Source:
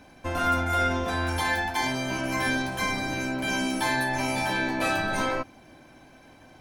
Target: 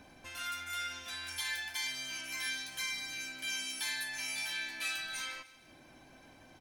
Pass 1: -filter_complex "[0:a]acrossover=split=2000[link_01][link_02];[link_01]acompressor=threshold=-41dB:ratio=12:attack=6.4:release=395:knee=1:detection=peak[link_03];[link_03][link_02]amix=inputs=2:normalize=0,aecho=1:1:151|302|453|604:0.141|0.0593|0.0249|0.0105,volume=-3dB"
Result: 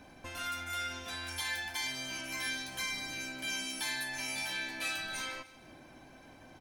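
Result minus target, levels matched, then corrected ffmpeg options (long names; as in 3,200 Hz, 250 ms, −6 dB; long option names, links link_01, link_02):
downward compressor: peak gain reduction −9 dB
-filter_complex "[0:a]acrossover=split=2000[link_01][link_02];[link_01]acompressor=threshold=-51dB:ratio=12:attack=6.4:release=395:knee=1:detection=peak[link_03];[link_03][link_02]amix=inputs=2:normalize=0,aecho=1:1:151|302|453|604:0.141|0.0593|0.0249|0.0105,volume=-3dB"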